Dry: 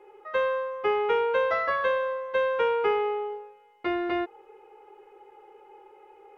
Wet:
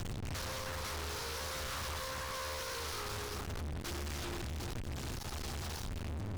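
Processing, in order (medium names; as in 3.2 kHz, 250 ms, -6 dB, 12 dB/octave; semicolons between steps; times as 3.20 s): sorted samples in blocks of 8 samples; wind noise 84 Hz -29 dBFS; compression 16:1, threshold -36 dBFS, peak gain reduction 20 dB; treble shelf 2.1 kHz +8.5 dB; hum notches 60/120/180/240/300/360/420 Hz; flange 0.33 Hz, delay 8.5 ms, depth 9.3 ms, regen +50%; on a send at -3 dB: reverberation RT60 0.45 s, pre-delay 127 ms; on the sum: power-law waveshaper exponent 0.35; high-order bell 580 Hz -12 dB 1.2 oct; two-band feedback delay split 1.6 kHz, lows 378 ms, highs 219 ms, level -8 dB; valve stage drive 40 dB, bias 0.6; loudspeaker Doppler distortion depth 0.91 ms; trim +2 dB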